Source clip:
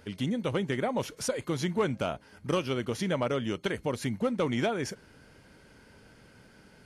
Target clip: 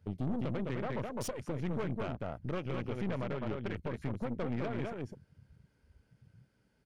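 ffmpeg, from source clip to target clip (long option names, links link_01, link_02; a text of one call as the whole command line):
ffmpeg -i in.wav -filter_complex "[0:a]asettb=1/sr,asplit=3[link_01][link_02][link_03];[link_01]atrim=end=3.044[link_04];[link_02]atrim=start=3.04:end=3.77,asetpts=PTS-STARTPTS,afade=type=in:duration=0.004:curve=qsin,afade=type=out:start_time=0.726:duration=0.004:curve=qsin,lowpass=frequency=4700:width=0.5412,lowpass=frequency=4700:width=1.3066[link_05];[link_03]atrim=start=3.766[link_06];[link_04][link_05]acrossfade=duration=0.004:curve1=hsin:curve2=qsin[link_07];[link_07][link_06]acrossfade=duration=0.004:curve1=qsin:curve2=hsin,aecho=1:1:206:0.631,afwtdn=0.01,alimiter=limit=-24dB:level=0:latency=1:release=338,highpass=47,lowshelf=frequency=160:gain=10,aeval=exprs='(tanh(35.5*val(0)+0.8)-tanh(0.8))/35.5':channel_layout=same" out.wav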